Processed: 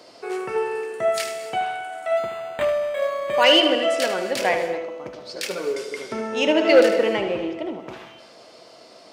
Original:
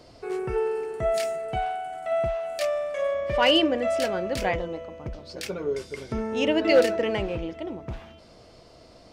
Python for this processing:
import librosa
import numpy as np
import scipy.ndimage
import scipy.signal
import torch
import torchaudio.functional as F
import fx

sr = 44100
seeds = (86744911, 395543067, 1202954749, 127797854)

p1 = fx.tilt_eq(x, sr, slope=-1.5, at=(6.46, 7.8))
p2 = p1 + 10.0 ** (-9.5 / 20.0) * np.pad(p1, (int(76 * sr / 1000.0), 0))[:len(p1)]
p3 = fx.rev_gated(p2, sr, seeds[0], gate_ms=300, shape='flat', drr_db=10.0)
p4 = np.clip(p3, -10.0 ** (-16.0 / 20.0), 10.0 ** (-16.0 / 20.0))
p5 = p3 + (p4 * librosa.db_to_amplitude(-6.5))
p6 = scipy.signal.sosfilt(scipy.signal.butter(2, 200.0, 'highpass', fs=sr, output='sos'), p5)
p7 = fx.low_shelf(p6, sr, hz=290.0, db=-11.0)
p8 = fx.resample_linear(p7, sr, factor=8, at=(2.17, 3.44))
y = p8 * librosa.db_to_amplitude(3.0)